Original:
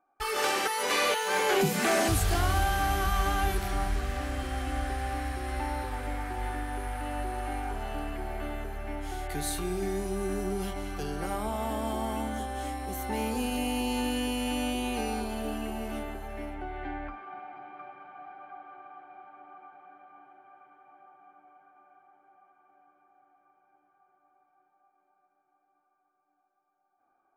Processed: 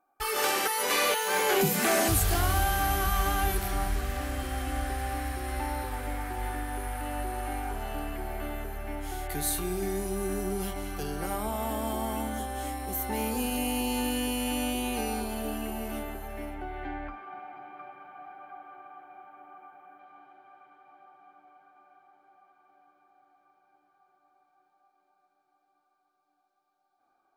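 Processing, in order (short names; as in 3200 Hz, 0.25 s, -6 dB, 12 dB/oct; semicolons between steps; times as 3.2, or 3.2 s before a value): bell 14000 Hz +11 dB 0.78 oct, from 19.99 s 4100 Hz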